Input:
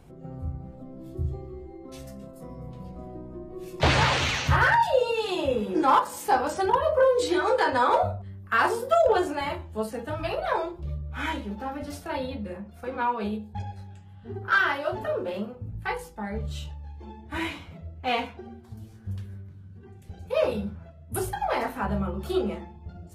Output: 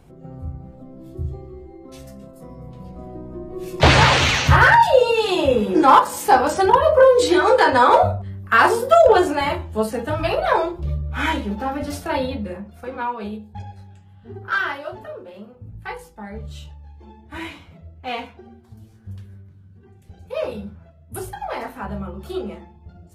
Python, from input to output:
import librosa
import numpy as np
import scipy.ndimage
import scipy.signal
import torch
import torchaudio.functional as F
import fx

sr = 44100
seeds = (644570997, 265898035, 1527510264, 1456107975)

y = fx.gain(x, sr, db=fx.line((2.69, 2.0), (3.74, 8.5), (12.19, 8.5), (13.15, 0.0), (14.67, 0.0), (15.32, -9.0), (15.67, -1.5)))